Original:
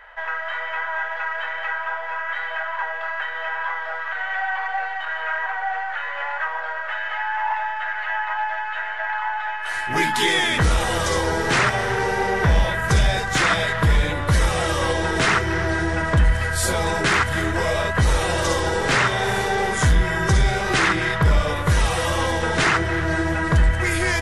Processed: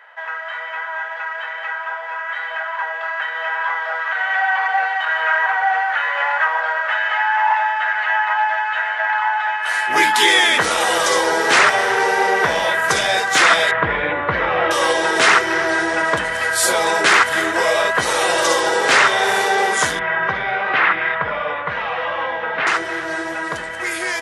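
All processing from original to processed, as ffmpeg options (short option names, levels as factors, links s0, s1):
-filter_complex "[0:a]asettb=1/sr,asplit=3[s0][s1][s2];[s0]atrim=end=13.714[s3];[s1]atrim=start=13.71:end=14.71,asetpts=PTS-STARTPTS,afade=t=in:d=0.004:c=qsin,afade=t=out:st=0.996:d=0.004:c=qsin,lowpass=f=2600:w=0.5412,lowpass=f=2600:w=1.3066,lowshelf=f=110:g=11.5[s4];[s2]atrim=start=14.706[s5];[s3][s4]acrossfade=d=0.004:c1=hsin:c2=qsin[s6];[s6][s5]acrossfade=d=0.004:c1=qsin:c2=hsin,asettb=1/sr,asplit=3[s7][s8][s9];[s7]atrim=end=19.994[s10];[s8]atrim=start=19.99:end=22.67,asetpts=PTS-STARTPTS,afade=t=in:d=0.004:c=qsin,afade=t=out:st=2.676:d=0.004:c=qsin,lowpass=f=2700:w=0.5412,lowpass=f=2700:w=1.3066,equalizer=f=350:w=2.7:g=-10.5[s11];[s9]atrim=start=22.666[s12];[s10][s11]acrossfade=d=0.004:c1=hsin:c2=qsin[s13];[s13][s12]acrossfade=d=0.004:c1=qsin:c2=hsin,highpass=430,dynaudnorm=f=750:g=11:m=3.76"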